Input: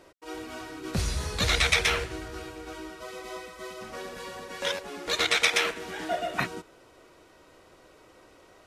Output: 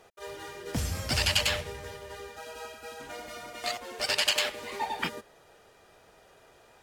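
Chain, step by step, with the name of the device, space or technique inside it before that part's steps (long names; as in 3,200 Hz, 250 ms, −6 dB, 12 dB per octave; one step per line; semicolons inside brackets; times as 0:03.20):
nightcore (speed change +27%)
level −2.5 dB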